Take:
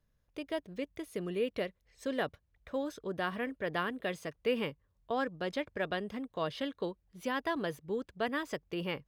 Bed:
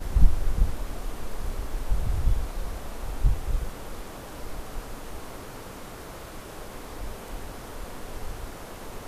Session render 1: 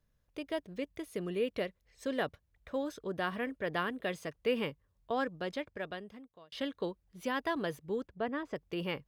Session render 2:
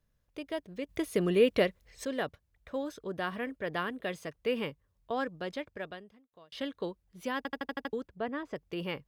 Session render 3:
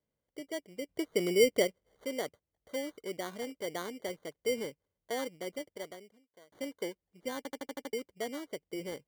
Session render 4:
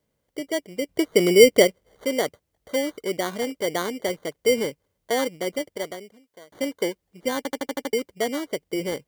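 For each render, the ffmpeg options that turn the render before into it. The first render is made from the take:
-filter_complex "[0:a]asettb=1/sr,asplit=3[a][b][c];[a]atrim=end=8.074[d];[b]atrim=start=8.07:end=8.56,asetpts=PTS-STARTPTS,afade=t=in:d=0.004:c=qsin,afade=t=out:st=0.486:d=0.004:c=qsin,lowpass=f=1.1k:p=1[e];[c]atrim=start=8.556[f];[d][e]acrossfade=d=0.004:c1=hsin:c2=qsin[g];[g][f]acrossfade=d=0.004:c1=qsin:c2=hsin,asplit=2[h][i];[h]atrim=end=6.52,asetpts=PTS-STARTPTS,afade=t=out:st=5.25:d=1.27[j];[i]atrim=start=6.52,asetpts=PTS-STARTPTS,afade=t=in:d=0.004:c=hsin[k];[j][k]concat=n=2:v=0:a=1"
-filter_complex "[0:a]asplit=11[a][b][c][d][e][f][g][h][i][j][k];[a]atrim=end=0.892[l];[b]atrim=start=0.888:end=2.052,asetpts=PTS-STARTPTS,volume=9dB[m];[c]atrim=start=2.048:end=6.32,asetpts=PTS-STARTPTS,afade=t=out:st=3.772:d=0.5[n];[d]atrim=start=6.32:end=7.452,asetpts=PTS-STARTPTS,afade=t=in:d=0.004:c=hsin[o];[e]atrim=start=7.368:end=7.452[p];[f]atrim=start=7.368:end=7.452[q];[g]atrim=start=7.368:end=7.452[r];[h]atrim=start=7.368:end=7.452[s];[i]atrim=start=7.368:end=7.452[t];[j]atrim=start=7.368:end=7.452[u];[k]atrim=start=7.928[v];[l][m]acrossfade=d=0.004:c1=hsin:c2=hsin[w];[n][o]concat=n=2:v=0:a=1[x];[w][x]acrossfade=d=0.004:c1=hsin:c2=hsin[y];[y][p]acrossfade=d=0.004:c1=hsin:c2=hsin[z];[z][q]acrossfade=d=0.004:c1=hsin:c2=hsin[aa];[aa][r]acrossfade=d=0.004:c1=hsin:c2=hsin[ab];[ab][s]acrossfade=d=0.004:c1=hsin:c2=hsin[ac];[ac][t]acrossfade=d=0.004:c1=hsin:c2=hsin[ad];[ad][u]acrossfade=d=0.004:c1=hsin:c2=hsin[ae];[ae][v]acrossfade=d=0.004:c1=hsin:c2=hsin"
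-af "bandpass=f=450:t=q:w=1.1:csg=0,acrusher=samples=17:mix=1:aa=0.000001"
-af "volume=12dB"

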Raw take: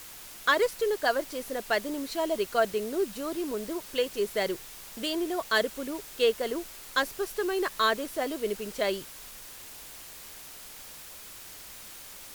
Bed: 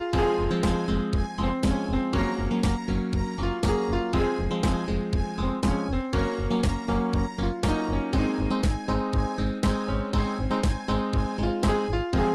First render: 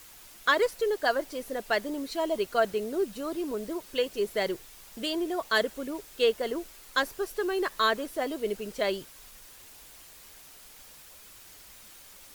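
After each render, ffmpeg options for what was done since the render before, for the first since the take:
-af "afftdn=nr=6:nf=-46"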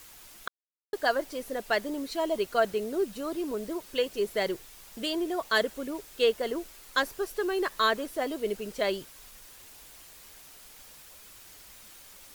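-filter_complex "[0:a]asplit=3[a][b][c];[a]atrim=end=0.48,asetpts=PTS-STARTPTS,afade=t=out:st=0.476:d=0.004:c=hsin[d];[b]atrim=start=0.48:end=0.93,asetpts=PTS-STARTPTS,volume=0[e];[c]atrim=start=0.93,asetpts=PTS-STARTPTS,afade=t=in:d=0.004:c=hsin[f];[d][e][f]concat=n=3:v=0:a=1"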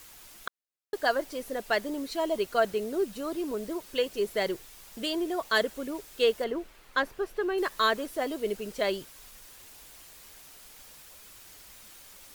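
-filter_complex "[0:a]asettb=1/sr,asplit=3[a][b][c];[a]atrim=end=6.444[d];[b]atrim=start=6.44:end=7.58,asetpts=PTS-STARTPTS,afade=t=in:d=0.004:c=qsin,afade=t=out:st=1.136:d=0.004:c=qsin,bass=f=250:g=1,treble=f=4k:g=-12[e];[c]atrim=start=7.576[f];[d][e]acrossfade=d=0.004:c1=hsin:c2=qsin[g];[g][f]acrossfade=d=0.004:c1=qsin:c2=hsin"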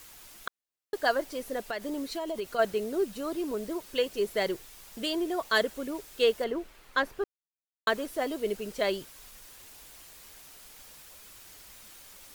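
-filter_complex "[0:a]asplit=3[a][b][c];[a]afade=t=out:st=1.66:d=0.02[d];[b]acompressor=threshold=-29dB:ratio=10:attack=3.2:release=140:knee=1:detection=peak,afade=t=in:st=1.66:d=0.02,afade=t=out:st=2.58:d=0.02[e];[c]afade=t=in:st=2.58:d=0.02[f];[d][e][f]amix=inputs=3:normalize=0,asplit=3[g][h][i];[g]atrim=end=7.24,asetpts=PTS-STARTPTS,afade=t=out:st=7.236:d=0.004:c=hsin[j];[h]atrim=start=7.24:end=7.87,asetpts=PTS-STARTPTS,volume=0[k];[i]atrim=start=7.87,asetpts=PTS-STARTPTS,afade=t=in:d=0.004:c=hsin[l];[j][k][l]concat=n=3:v=0:a=1"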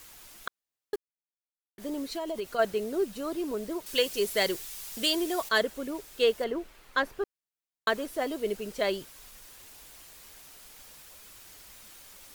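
-filter_complex "[0:a]asettb=1/sr,asplit=3[a][b][c];[a]atrim=end=3.864[d];[b]atrim=start=3.86:end=5.49,asetpts=PTS-STARTPTS,afade=t=in:d=0.004:c=qsin,afade=t=out:st=1.626:d=0.004:c=qsin,highshelf=f=2.4k:g=10.5[e];[c]atrim=start=5.486[f];[d][e]acrossfade=d=0.004:c1=hsin:c2=qsin[g];[g][f]acrossfade=d=0.004:c1=qsin:c2=hsin,asplit=3[h][i][j];[h]atrim=end=0.96,asetpts=PTS-STARTPTS,afade=t=out:st=0.956:d=0.004:c=hsin[k];[i]atrim=start=0.96:end=1.78,asetpts=PTS-STARTPTS,volume=0[l];[j]atrim=start=1.78,asetpts=PTS-STARTPTS,afade=t=in:d=0.004:c=hsin[m];[k][l][m]concat=n=3:v=0:a=1"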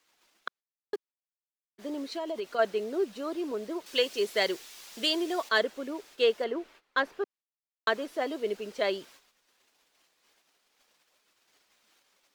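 -filter_complex "[0:a]acrossover=split=200 6300:gain=0.1 1 0.224[a][b][c];[a][b][c]amix=inputs=3:normalize=0,agate=range=-17dB:threshold=-53dB:ratio=16:detection=peak"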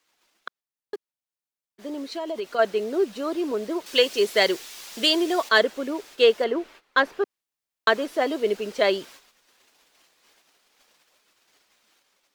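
-af "dynaudnorm=f=990:g=5:m=8.5dB"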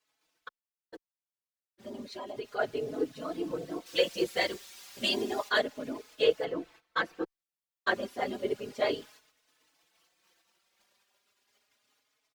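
-filter_complex "[0:a]afftfilt=real='hypot(re,im)*cos(2*PI*random(0))':imag='hypot(re,im)*sin(2*PI*random(1))':win_size=512:overlap=0.75,asplit=2[a][b];[b]adelay=4.2,afreqshift=0.32[c];[a][c]amix=inputs=2:normalize=1"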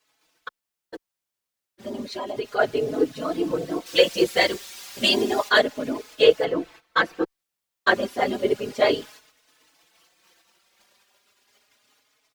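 -af "volume=9.5dB"

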